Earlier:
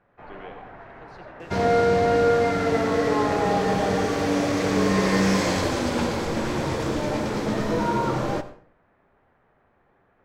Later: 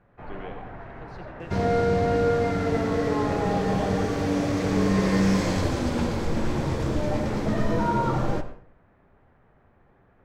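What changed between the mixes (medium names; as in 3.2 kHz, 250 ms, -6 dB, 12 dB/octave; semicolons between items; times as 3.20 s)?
second sound -5.5 dB; master: add bass shelf 230 Hz +10.5 dB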